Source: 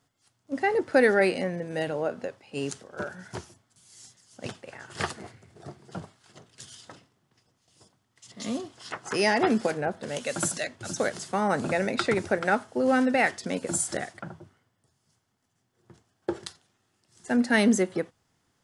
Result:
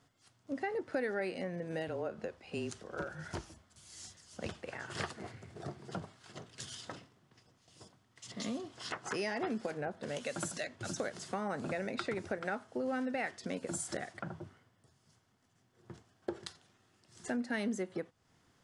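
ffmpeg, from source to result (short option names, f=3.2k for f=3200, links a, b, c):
-filter_complex "[0:a]asettb=1/sr,asplit=3[a][b][c];[a]atrim=end=1.884[d];[b]atrim=start=1.88:end=4.68,asetpts=PTS-STARTPTS,afade=t=in:d=0.004:c=qsin,afade=t=out:st=2.796:d=0.004:c=qsin,afreqshift=-27[e];[c]atrim=start=4.676[f];[d][e]acrossfade=d=0.004:c1=hsin:c2=qsin[g];[g][f]acrossfade=d=0.004:c1=qsin:c2=hsin,highshelf=f=8.5k:g=-9,bandreject=f=850:w=28,acompressor=threshold=-42dB:ratio=3,volume=3dB"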